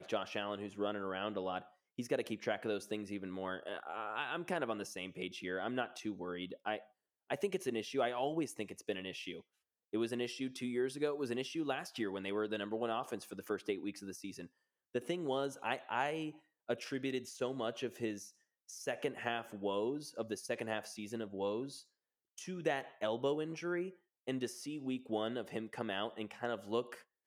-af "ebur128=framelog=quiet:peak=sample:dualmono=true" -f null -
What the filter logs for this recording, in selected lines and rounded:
Integrated loudness:
  I:         -36.9 LUFS
  Threshold: -47.1 LUFS
Loudness range:
  LRA:         1.9 LU
  Threshold: -57.1 LUFS
  LRA low:   -37.9 LUFS
  LRA high:  -36.0 LUFS
Sample peak:
  Peak:      -18.9 dBFS